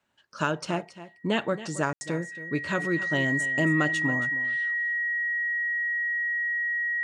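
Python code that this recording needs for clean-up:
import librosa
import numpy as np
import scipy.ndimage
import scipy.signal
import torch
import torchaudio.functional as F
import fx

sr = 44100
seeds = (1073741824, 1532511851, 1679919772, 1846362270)

y = fx.notch(x, sr, hz=1900.0, q=30.0)
y = fx.fix_ambience(y, sr, seeds[0], print_start_s=0.0, print_end_s=0.5, start_s=1.93, end_s=2.01)
y = fx.fix_echo_inverse(y, sr, delay_ms=275, level_db=-15.0)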